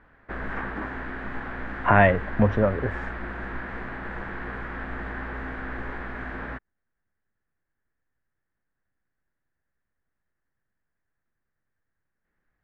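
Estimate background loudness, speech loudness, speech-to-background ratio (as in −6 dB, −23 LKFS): −34.5 LKFS, −22.0 LKFS, 12.5 dB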